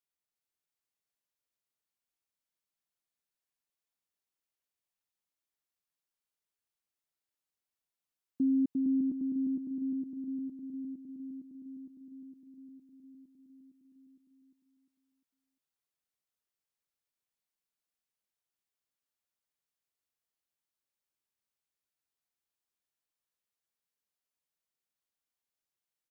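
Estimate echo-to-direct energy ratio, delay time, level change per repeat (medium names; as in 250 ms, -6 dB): -2.0 dB, 351 ms, -7.5 dB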